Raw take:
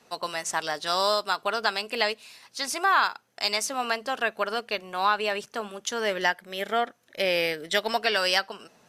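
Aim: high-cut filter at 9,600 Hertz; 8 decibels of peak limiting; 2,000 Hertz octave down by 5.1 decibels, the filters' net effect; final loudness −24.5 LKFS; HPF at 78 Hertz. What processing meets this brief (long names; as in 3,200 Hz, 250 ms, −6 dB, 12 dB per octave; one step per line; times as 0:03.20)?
high-pass filter 78 Hz
low-pass filter 9,600 Hz
parametric band 2,000 Hz −7 dB
level +6.5 dB
brickwall limiter −11.5 dBFS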